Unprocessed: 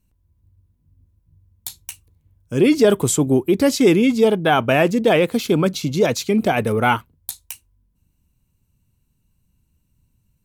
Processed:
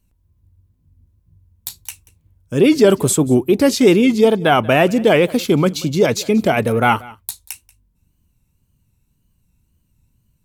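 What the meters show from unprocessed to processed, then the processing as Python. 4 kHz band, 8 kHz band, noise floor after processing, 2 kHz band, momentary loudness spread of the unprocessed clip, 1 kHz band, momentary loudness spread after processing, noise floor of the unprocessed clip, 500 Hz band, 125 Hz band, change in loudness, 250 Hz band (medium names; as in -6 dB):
+2.5 dB, +2.0 dB, -64 dBFS, +2.0 dB, 20 LU, +2.5 dB, 20 LU, -67 dBFS, +2.5 dB, +2.5 dB, +2.5 dB, +2.5 dB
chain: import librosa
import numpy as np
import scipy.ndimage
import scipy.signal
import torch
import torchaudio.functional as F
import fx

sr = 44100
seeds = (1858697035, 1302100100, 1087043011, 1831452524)

y = fx.wow_flutter(x, sr, seeds[0], rate_hz=2.1, depth_cents=83.0)
y = y + 10.0 ** (-22.0 / 20.0) * np.pad(y, (int(185 * sr / 1000.0), 0))[:len(y)]
y = F.gain(torch.from_numpy(y), 2.5).numpy()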